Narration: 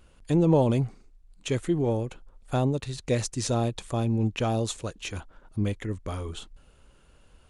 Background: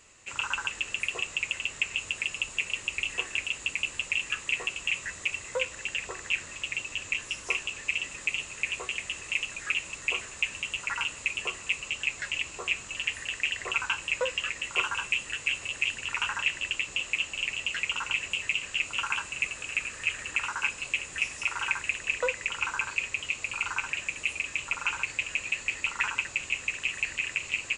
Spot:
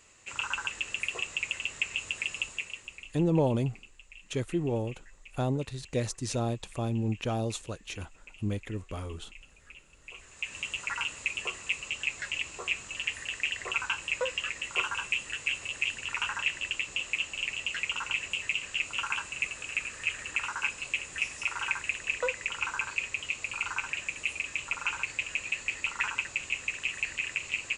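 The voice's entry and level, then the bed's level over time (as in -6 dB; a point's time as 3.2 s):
2.85 s, -4.5 dB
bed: 2.43 s -2 dB
3.33 s -22.5 dB
9.97 s -22.5 dB
10.59 s -2 dB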